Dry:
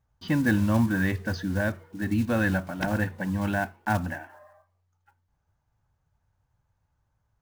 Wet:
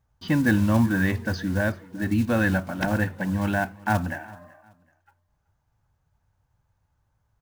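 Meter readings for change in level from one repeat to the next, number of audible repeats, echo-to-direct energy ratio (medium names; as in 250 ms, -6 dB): -11.0 dB, 2, -21.5 dB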